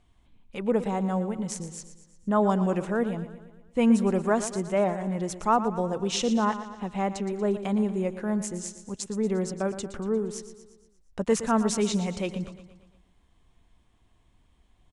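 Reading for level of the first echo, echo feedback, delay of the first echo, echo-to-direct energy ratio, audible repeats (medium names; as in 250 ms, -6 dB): -12.5 dB, 54%, 117 ms, -11.0 dB, 5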